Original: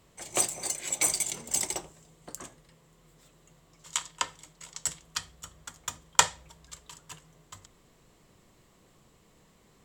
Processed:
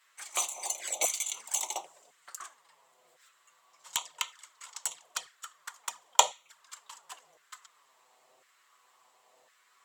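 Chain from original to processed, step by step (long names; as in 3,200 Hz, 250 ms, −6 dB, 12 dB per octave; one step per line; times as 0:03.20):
auto-filter high-pass saw down 0.95 Hz 610–1,600 Hz
flanger swept by the level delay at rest 8.8 ms, full sweep at −30 dBFS
level +1 dB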